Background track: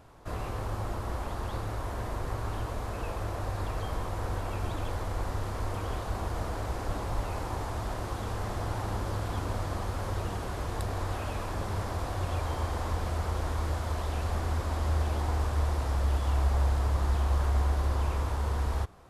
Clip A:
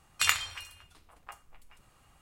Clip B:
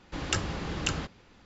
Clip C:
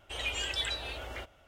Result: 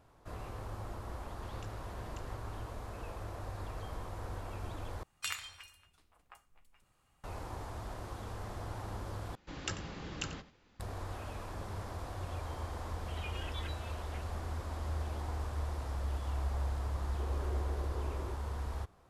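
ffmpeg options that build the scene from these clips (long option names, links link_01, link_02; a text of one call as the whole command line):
ffmpeg -i bed.wav -i cue0.wav -i cue1.wav -i cue2.wav -filter_complex "[2:a]asplit=2[link_01][link_02];[3:a]asplit=2[link_03][link_04];[0:a]volume=-9dB[link_05];[link_01]acompressor=threshold=-39dB:ratio=6:attack=3.2:release=140:knee=1:detection=peak[link_06];[1:a]alimiter=limit=-10dB:level=0:latency=1:release=126[link_07];[link_02]aecho=1:1:91:0.178[link_08];[link_03]lowpass=3400[link_09];[link_04]lowpass=frequency=390:width_type=q:width=2.9[link_10];[link_05]asplit=3[link_11][link_12][link_13];[link_11]atrim=end=5.034[link_14];[link_07]atrim=end=2.21,asetpts=PTS-STARTPTS,volume=-10dB[link_15];[link_12]atrim=start=7.236:end=9.354[link_16];[link_08]atrim=end=1.45,asetpts=PTS-STARTPTS,volume=-9.5dB[link_17];[link_13]atrim=start=10.796[link_18];[link_06]atrim=end=1.45,asetpts=PTS-STARTPTS,volume=-12dB,afade=type=in:duration=0.004:curve=hsin,afade=type=out:start_time=1.446:duration=0.004:curve=hsin,adelay=1300[link_19];[link_09]atrim=end=1.47,asetpts=PTS-STARTPTS,volume=-11.5dB,afade=type=in:duration=0.004:curve=hsin,afade=type=out:start_time=1.466:duration=0.004:curve=hsin,adelay=12980[link_20];[link_10]atrim=end=1.47,asetpts=PTS-STARTPTS,volume=-3.5dB,afade=type=in:duration=0.004:curve=hsin,afade=type=out:start_time=1.466:duration=0.004:curve=hsin,adelay=17090[link_21];[link_14][link_15]acrossfade=duration=0.004:curve1=hsin:curve2=hsin[link_22];[link_22][link_16]acrossfade=duration=0.004:curve1=hsin:curve2=hsin[link_23];[link_23][link_17]acrossfade=duration=0.004:curve1=hsin:curve2=hsin[link_24];[link_24][link_18]acrossfade=duration=0.004:curve1=hsin:curve2=hsin[link_25];[link_25][link_19][link_20][link_21]amix=inputs=4:normalize=0" out.wav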